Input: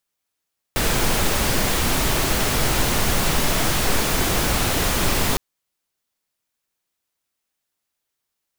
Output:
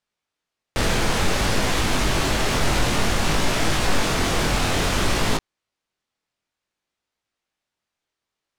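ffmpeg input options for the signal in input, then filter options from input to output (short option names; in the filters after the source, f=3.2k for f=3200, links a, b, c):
-f lavfi -i "anoisesrc=c=pink:a=0.543:d=4.61:r=44100:seed=1"
-filter_complex "[0:a]asplit=2[a][b];[b]alimiter=limit=-16.5dB:level=0:latency=1,volume=-2dB[c];[a][c]amix=inputs=2:normalize=0,flanger=delay=18.5:depth=5.9:speed=0.56,adynamicsmooth=sensitivity=2.5:basefreq=5.8k"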